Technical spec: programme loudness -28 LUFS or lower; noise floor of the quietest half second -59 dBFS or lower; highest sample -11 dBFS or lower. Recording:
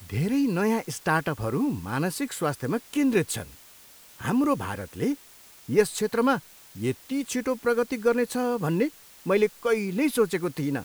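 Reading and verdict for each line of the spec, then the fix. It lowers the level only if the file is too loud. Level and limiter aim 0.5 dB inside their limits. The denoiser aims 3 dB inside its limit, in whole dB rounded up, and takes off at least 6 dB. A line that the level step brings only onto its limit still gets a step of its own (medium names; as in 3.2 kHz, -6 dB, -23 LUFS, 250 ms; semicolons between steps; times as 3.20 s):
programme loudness -26.5 LUFS: fail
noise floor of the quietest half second -51 dBFS: fail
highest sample -8.5 dBFS: fail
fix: noise reduction 9 dB, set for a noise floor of -51 dBFS; trim -2 dB; peak limiter -11.5 dBFS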